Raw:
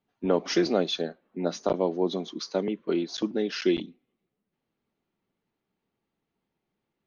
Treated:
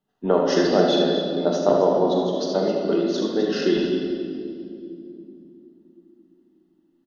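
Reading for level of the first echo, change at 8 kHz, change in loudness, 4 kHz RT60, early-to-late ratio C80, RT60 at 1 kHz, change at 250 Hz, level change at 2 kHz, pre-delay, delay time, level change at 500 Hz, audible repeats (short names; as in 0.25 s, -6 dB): -9.0 dB, n/a, +7.0 dB, 1.9 s, 2.0 dB, 2.1 s, +6.5 dB, +5.0 dB, 5 ms, 45 ms, +8.5 dB, 3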